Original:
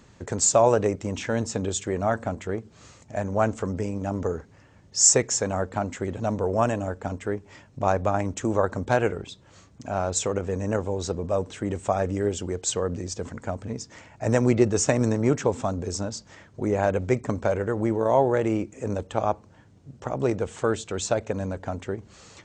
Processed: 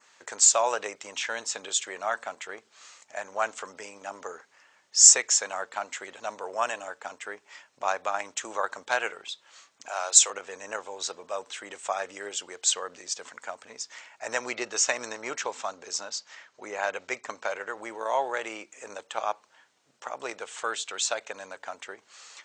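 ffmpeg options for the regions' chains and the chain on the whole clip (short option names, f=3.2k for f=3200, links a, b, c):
-filter_complex "[0:a]asettb=1/sr,asplit=3[a][b][c];[a]atrim=end=9.884[d];[b]atrim=start=9.88:end=10.3,asetpts=PTS-STARTPTS,afade=t=in:d=0.004:c=qsin,afade=t=out:st=0.416:d=0.004:c=qsin,highpass=f=360:w=0.5412,highpass=f=360:w=1.3066,highshelf=f=5.4k:g=12[e];[c]atrim=start=10.296[f];[d][e]acrossfade=d=0.004:c1=hsin:c2=qsin[g];[g][f]acrossfade=d=0.004:c1=qsin:c2=hsin,asettb=1/sr,asplit=3[h][i][j];[h]atrim=end=14.284[k];[i]atrim=start=14.28:end=17.77,asetpts=PTS-STARTPTS,afade=t=in:d=0.004:c=qsin,afade=t=out:st=3.486:d=0.004:c=qsin,lowpass=f=7.6k:w=0.5412,lowpass=f=7.6k:w=1.3066,bandreject=f=3.4k:w=22[l];[j]atrim=start=17.766[m];[k][l]acrossfade=d=0.004:c1=hsin:c2=qsin[n];[n][m]acrossfade=d=0.004:c1=qsin:c2=hsin,highpass=1.1k,adynamicequalizer=threshold=0.00501:dfrequency=3500:dqfactor=1.4:tfrequency=3500:tqfactor=1.4:attack=5:release=100:ratio=0.375:range=2:mode=boostabove:tftype=bell,volume=2.5dB"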